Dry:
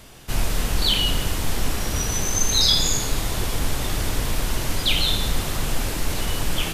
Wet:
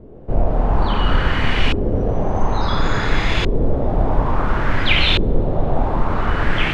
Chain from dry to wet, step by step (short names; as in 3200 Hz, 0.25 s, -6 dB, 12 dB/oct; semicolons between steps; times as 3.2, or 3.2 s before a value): Schroeder reverb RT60 4 s, combs from 29 ms, DRR 5 dB; LFO low-pass saw up 0.58 Hz 390–2700 Hz; gain +5.5 dB